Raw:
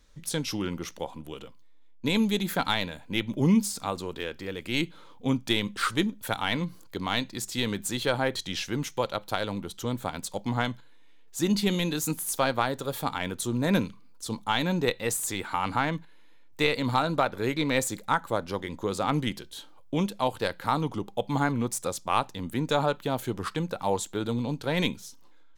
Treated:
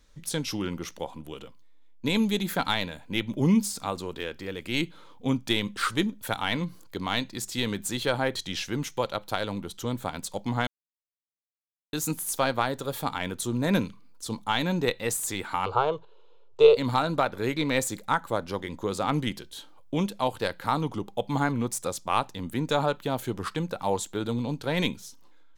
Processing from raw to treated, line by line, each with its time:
0:10.67–0:11.93: silence
0:15.66–0:16.77: drawn EQ curve 120 Hz 0 dB, 260 Hz −25 dB, 400 Hz +15 dB, 740 Hz +3 dB, 1,300 Hz +4 dB, 1,900 Hz −22 dB, 2,800 Hz 0 dB, 4,500 Hz −5 dB, 7,300 Hz −10 dB, 11,000 Hz −25 dB

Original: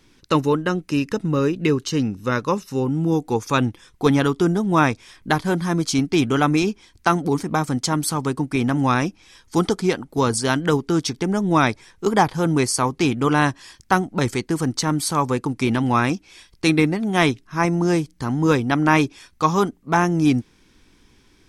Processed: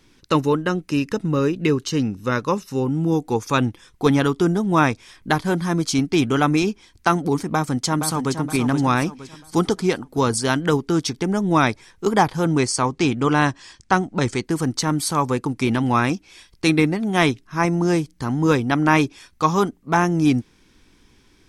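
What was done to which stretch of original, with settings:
0:07.51–0:08.40: delay throw 470 ms, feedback 40%, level −8 dB
0:12.45–0:14.44: Butterworth low-pass 9,100 Hz

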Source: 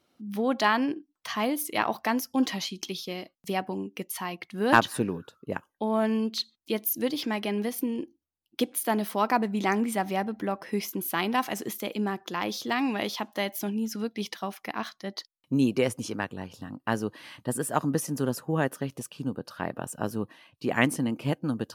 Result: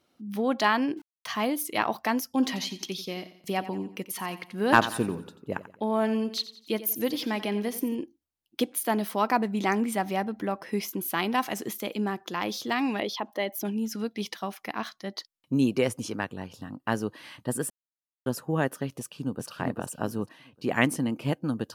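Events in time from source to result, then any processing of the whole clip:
0:00.97–0:01.41: centre clipping without the shift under −49.5 dBFS
0:02.33–0:07.95: repeating echo 89 ms, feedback 43%, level −14.5 dB
0:13.00–0:13.65: spectral envelope exaggerated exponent 1.5
0:17.70–0:18.26: silence
0:18.99–0:19.48: delay throw 400 ms, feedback 25%, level −2.5 dB

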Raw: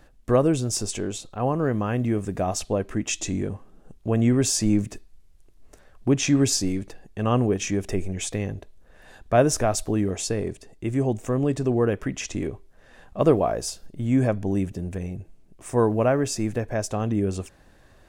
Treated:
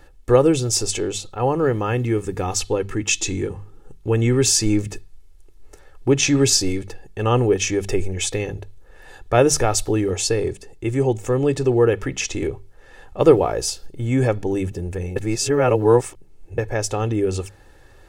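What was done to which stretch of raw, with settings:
0:01.97–0:04.80: parametric band 630 Hz −13 dB 0.25 octaves
0:15.16–0:16.58: reverse
whole clip: mains-hum notches 50/100/150/200 Hz; dynamic equaliser 3,800 Hz, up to +4 dB, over −45 dBFS, Q 0.88; comb filter 2.3 ms, depth 59%; level +3.5 dB

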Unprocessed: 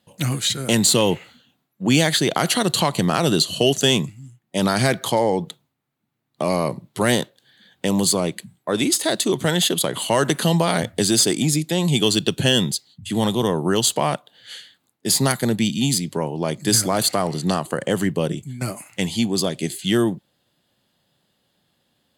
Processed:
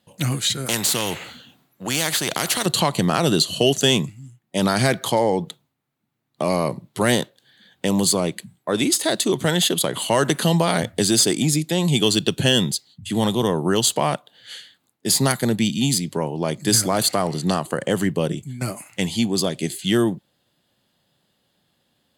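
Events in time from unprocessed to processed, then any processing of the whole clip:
0:00.66–0:02.66: every bin compressed towards the loudest bin 2 to 1

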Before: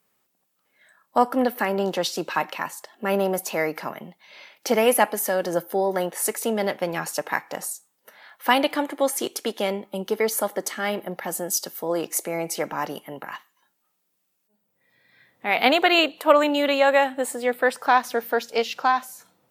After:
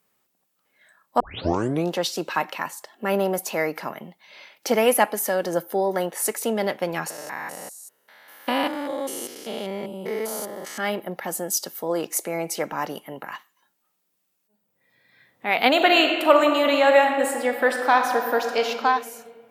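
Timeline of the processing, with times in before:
0:01.20: tape start 0.73 s
0:07.10–0:10.78: spectrum averaged block by block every 200 ms
0:15.69–0:18.68: thrown reverb, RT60 2 s, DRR 3.5 dB

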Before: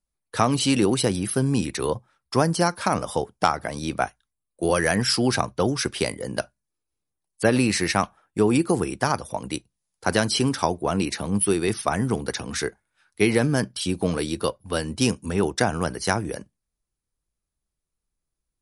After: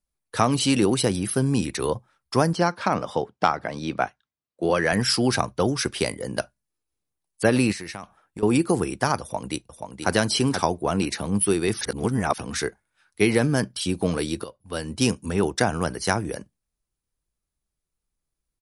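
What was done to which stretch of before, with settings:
0:02.53–0:04.93: band-pass filter 110–4,400 Hz
0:07.72–0:08.43: downward compressor, threshold −32 dBFS
0:09.21–0:10.12: delay throw 480 ms, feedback 10%, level −6.5 dB
0:11.81–0:12.38: reverse
0:14.44–0:15.03: fade in, from −18.5 dB

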